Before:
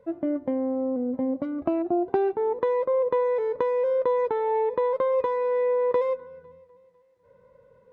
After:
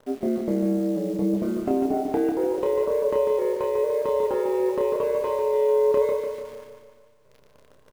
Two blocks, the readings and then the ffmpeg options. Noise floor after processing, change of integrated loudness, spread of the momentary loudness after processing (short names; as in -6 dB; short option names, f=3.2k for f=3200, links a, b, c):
-56 dBFS, +1.5 dB, 5 LU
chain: -filter_complex "[0:a]bass=f=250:g=6,treble=f=4k:g=3,aeval=exprs='val(0)*sin(2*PI*66*n/s)':c=same,acrossover=split=660[a][b];[b]asoftclip=type=tanh:threshold=-28dB[c];[a][c]amix=inputs=2:normalize=0,acontrast=46,acrusher=bits=8:dc=4:mix=0:aa=0.000001,asplit=2[d][e];[e]adelay=30,volume=-4dB[f];[d][f]amix=inputs=2:normalize=0,asplit=2[g][h];[h]aecho=0:1:147|294|441|588|735|882|1029:0.501|0.271|0.146|0.0789|0.0426|0.023|0.0124[i];[g][i]amix=inputs=2:normalize=0,volume=-5dB"